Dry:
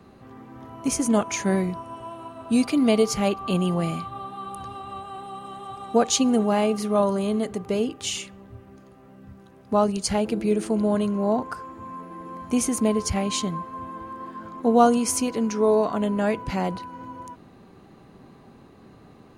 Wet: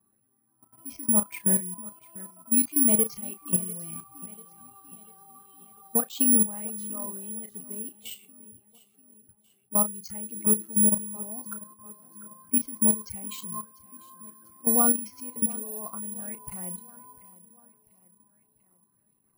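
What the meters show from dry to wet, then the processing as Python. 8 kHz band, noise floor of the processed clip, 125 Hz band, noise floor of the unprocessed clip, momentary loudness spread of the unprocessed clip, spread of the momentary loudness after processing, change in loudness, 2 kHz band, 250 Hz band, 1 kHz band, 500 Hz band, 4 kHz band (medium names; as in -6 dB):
+6.0 dB, -70 dBFS, -10.0 dB, -50 dBFS, 17 LU, 21 LU, -1.0 dB, -13.5 dB, -8.0 dB, -14.0 dB, -15.5 dB, -15.0 dB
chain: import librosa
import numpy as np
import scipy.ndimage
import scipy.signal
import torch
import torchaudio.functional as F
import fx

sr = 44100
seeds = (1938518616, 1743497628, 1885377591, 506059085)

p1 = fx.bin_expand(x, sr, power=1.5)
p2 = fx.peak_eq(p1, sr, hz=210.0, db=9.0, octaves=0.67)
p3 = fx.level_steps(p2, sr, step_db=17)
p4 = fx.doubler(p3, sr, ms=33.0, db=-11)
p5 = p4 + fx.echo_feedback(p4, sr, ms=694, feedback_pct=48, wet_db=-19.0, dry=0)
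p6 = (np.kron(scipy.signal.resample_poly(p5, 1, 4), np.eye(4)[0]) * 4)[:len(p5)]
p7 = fx.bell_lfo(p6, sr, hz=1.7, low_hz=930.0, high_hz=3500.0, db=9)
y = F.gain(torch.from_numpy(p7), -9.0).numpy()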